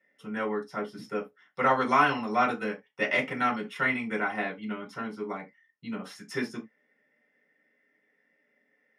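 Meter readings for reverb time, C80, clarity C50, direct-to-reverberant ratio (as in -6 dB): not exponential, 26.0 dB, 14.5 dB, -4.0 dB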